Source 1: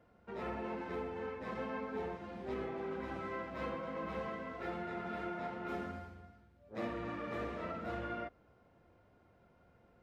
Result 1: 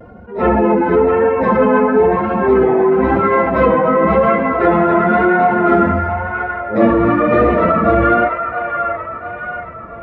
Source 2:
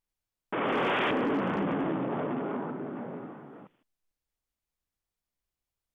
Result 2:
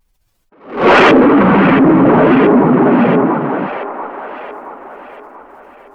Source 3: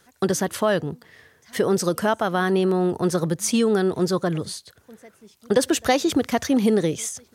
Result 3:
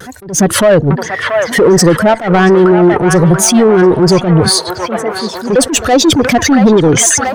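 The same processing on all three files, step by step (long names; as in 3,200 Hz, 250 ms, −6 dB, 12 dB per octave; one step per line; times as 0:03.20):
expanding power law on the bin magnitudes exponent 1.6
in parallel at −11 dB: asymmetric clip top −30.5 dBFS
on the sum: downward compressor, threshold −23 dBFS
soft clipping −24 dBFS
on a send: delay with a band-pass on its return 681 ms, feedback 50%, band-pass 1,400 Hz, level −3.5 dB
on the sum: pitch vibrato 0.98 Hz 40 cents
boost into a limiter +27.5 dB
level that may rise only so fast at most 140 dB per second
level −1 dB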